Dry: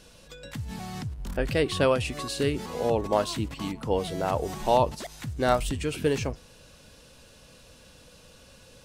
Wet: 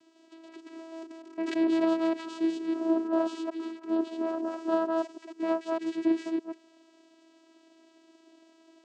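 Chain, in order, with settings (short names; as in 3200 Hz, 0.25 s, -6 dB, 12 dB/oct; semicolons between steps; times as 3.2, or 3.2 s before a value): reverse delay 0.152 s, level -1 dB; vocoder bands 8, saw 326 Hz; 1.16–1.94 sustainer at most 35 dB/s; gain -4 dB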